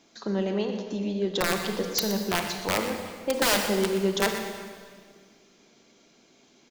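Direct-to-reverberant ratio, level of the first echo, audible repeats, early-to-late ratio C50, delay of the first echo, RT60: 4.0 dB, -11.5 dB, 1, 5.0 dB, 0.122 s, 1.9 s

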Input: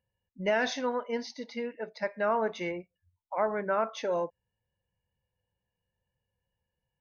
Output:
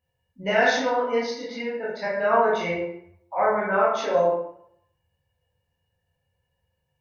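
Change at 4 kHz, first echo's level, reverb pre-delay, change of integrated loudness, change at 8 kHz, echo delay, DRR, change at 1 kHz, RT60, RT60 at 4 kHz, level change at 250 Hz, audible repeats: +7.0 dB, none, 12 ms, +8.0 dB, n/a, none, -8.0 dB, +9.5 dB, 0.70 s, 0.50 s, +5.0 dB, none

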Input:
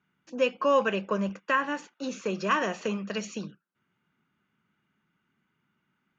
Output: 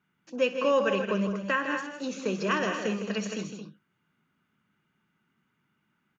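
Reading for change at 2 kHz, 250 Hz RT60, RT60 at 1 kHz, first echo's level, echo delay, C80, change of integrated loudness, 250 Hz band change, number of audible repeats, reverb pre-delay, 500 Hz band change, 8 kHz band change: 0.0 dB, none, none, -17.5 dB, 62 ms, none, 0.0 dB, +1.5 dB, 4, none, +0.5 dB, n/a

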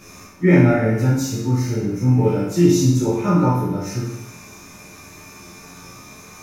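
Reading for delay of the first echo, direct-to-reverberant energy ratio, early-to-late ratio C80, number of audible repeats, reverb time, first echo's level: none, -9.5 dB, 4.5 dB, none, 0.85 s, none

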